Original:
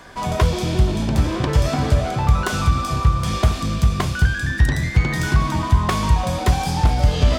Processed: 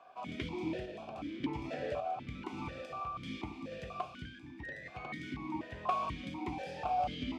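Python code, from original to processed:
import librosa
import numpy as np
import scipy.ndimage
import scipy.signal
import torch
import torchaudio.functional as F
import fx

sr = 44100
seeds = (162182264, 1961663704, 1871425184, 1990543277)

y = fx.tremolo_random(x, sr, seeds[0], hz=3.5, depth_pct=55)
y = fx.vowel_held(y, sr, hz=4.1)
y = y * 10.0 ** (-1.5 / 20.0)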